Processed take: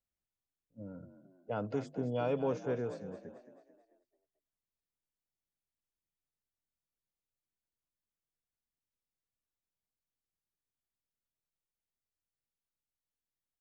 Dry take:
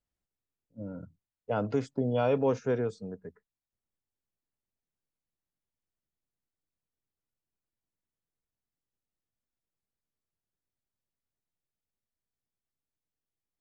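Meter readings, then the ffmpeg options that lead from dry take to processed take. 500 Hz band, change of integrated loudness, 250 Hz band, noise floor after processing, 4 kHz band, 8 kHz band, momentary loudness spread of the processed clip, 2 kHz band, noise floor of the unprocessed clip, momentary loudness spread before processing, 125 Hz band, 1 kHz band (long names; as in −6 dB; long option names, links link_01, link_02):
−6.0 dB, −7.0 dB, −6.0 dB, below −85 dBFS, −6.0 dB, can't be measured, 18 LU, −6.0 dB, below −85 dBFS, 17 LU, −6.5 dB, −6.0 dB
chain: -filter_complex "[0:a]asplit=6[link_01][link_02][link_03][link_04][link_05][link_06];[link_02]adelay=220,afreqshift=41,volume=-12dB[link_07];[link_03]adelay=440,afreqshift=82,volume=-18.6dB[link_08];[link_04]adelay=660,afreqshift=123,volume=-25.1dB[link_09];[link_05]adelay=880,afreqshift=164,volume=-31.7dB[link_10];[link_06]adelay=1100,afreqshift=205,volume=-38.2dB[link_11];[link_01][link_07][link_08][link_09][link_10][link_11]amix=inputs=6:normalize=0,volume=-6.5dB"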